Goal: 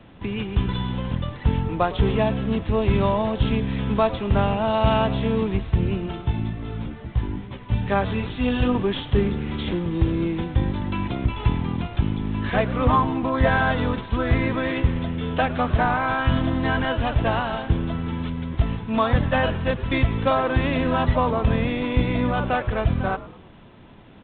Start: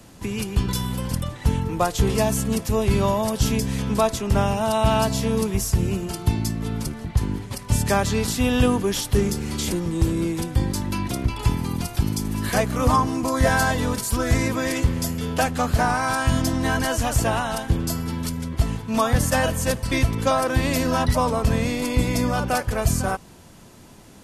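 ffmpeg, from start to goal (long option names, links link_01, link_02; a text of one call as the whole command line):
ffmpeg -i in.wav -filter_complex "[0:a]asettb=1/sr,asplit=3[link_01][link_02][link_03];[link_01]atrim=end=6.214[link_04];[link_02]atrim=start=6.21:end=8.75,asetpts=PTS-STARTPTS,afade=type=in:duration=0.004:curve=qsin,afade=type=out:start_time=2.536:duration=0.004:curve=qsin,flanger=delay=15:depth=2.4:speed=2.3[link_05];[link_03]atrim=start=8.746[link_06];[link_04][link_05]acrossfade=duration=0.004:curve1=hsin:curve2=qsin[link_07];[link_07][link_06]acrossfade=duration=0.004:curve1=qsin:curve2=hsin,asplit=5[link_08][link_09][link_10][link_11][link_12];[link_09]adelay=106,afreqshift=-130,volume=-16dB[link_13];[link_10]adelay=212,afreqshift=-260,volume=-22.7dB[link_14];[link_11]adelay=318,afreqshift=-390,volume=-29.5dB[link_15];[link_12]adelay=424,afreqshift=-520,volume=-36.2dB[link_16];[link_08][link_13][link_14][link_15][link_16]amix=inputs=5:normalize=0" -ar 8000 -c:a adpcm_g726 -b:a 32k out.wav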